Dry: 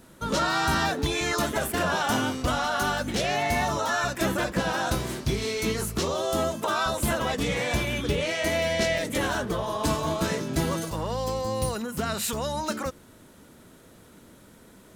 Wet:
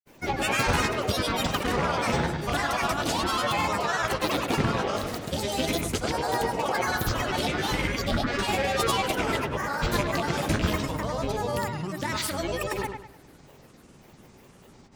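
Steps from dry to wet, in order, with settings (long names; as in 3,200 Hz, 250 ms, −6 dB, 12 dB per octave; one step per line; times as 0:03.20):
loose part that buzzes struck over −28 dBFS, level −19 dBFS
granular cloud, pitch spread up and down by 12 semitones
delay with a low-pass on its return 102 ms, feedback 35%, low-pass 2,900 Hz, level −6 dB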